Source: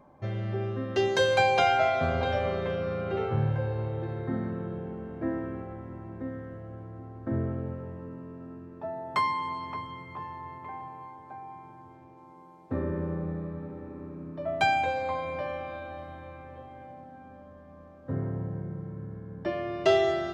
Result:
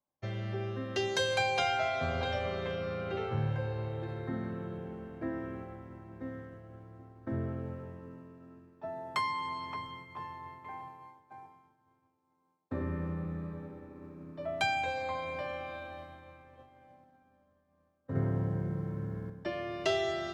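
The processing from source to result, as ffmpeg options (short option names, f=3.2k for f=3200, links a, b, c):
-filter_complex "[0:a]asettb=1/sr,asplit=3[a][b][c];[a]atrim=end=11.364[d];[b]atrim=start=11.36:end=13.53,asetpts=PTS-STARTPTS,afade=t=in:d=0.004:c=qsin,afade=t=out:st=2.166:d=0.004:c=qsin,asplit=2[e][f];[f]adelay=96,lowpass=f=2k:p=1,volume=-5dB,asplit=2[g][h];[h]adelay=96,lowpass=f=2k:p=1,volume=0.47,asplit=2[i][j];[j]adelay=96,lowpass=f=2k:p=1,volume=0.47,asplit=2[k][l];[l]adelay=96,lowpass=f=2k:p=1,volume=0.47,asplit=2[m][n];[n]adelay=96,lowpass=f=2k:p=1,volume=0.47,asplit=2[o][p];[p]adelay=96,lowpass=f=2k:p=1,volume=0.47[q];[e][g][i][k][m][o][q]amix=inputs=7:normalize=0,atrim=end_sample=95697[r];[c]atrim=start=13.526[s];[d][r]acrossfade=d=0.004:c1=hsin:c2=qsin[t];[t][s]acrossfade=d=0.004:c1=qsin:c2=hsin,asettb=1/sr,asplit=3[u][v][w];[u]atrim=end=18.154[x];[v]atrim=start=18.15:end=19.3,asetpts=PTS-STARTPTS,afade=t=in:d=0.004:c=qsin,afade=t=out:st=1.146:d=0.004:c=qsin,acontrast=78[y];[w]atrim=start=19.296[z];[x][y]acrossfade=d=0.004:c1=hsin:c2=qsin[aa];[aa][z]acrossfade=d=0.004:c1=qsin:c2=hsin,highshelf=f=2.1k:g=9.5,agate=range=-33dB:threshold=-37dB:ratio=3:detection=peak,acrossover=split=150[ab][ac];[ac]acompressor=threshold=-29dB:ratio=1.5[ad];[ab][ad]amix=inputs=2:normalize=0,volume=-5dB"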